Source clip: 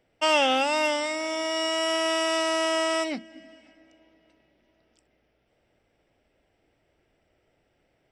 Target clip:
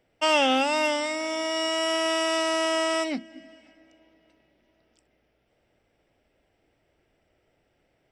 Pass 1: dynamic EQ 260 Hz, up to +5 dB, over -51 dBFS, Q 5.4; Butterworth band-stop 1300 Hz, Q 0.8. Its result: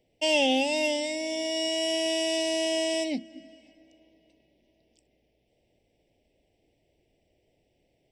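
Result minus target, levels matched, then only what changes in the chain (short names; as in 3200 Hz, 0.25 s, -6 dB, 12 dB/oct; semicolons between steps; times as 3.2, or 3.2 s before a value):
1000 Hz band -7.0 dB
remove: Butterworth band-stop 1300 Hz, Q 0.8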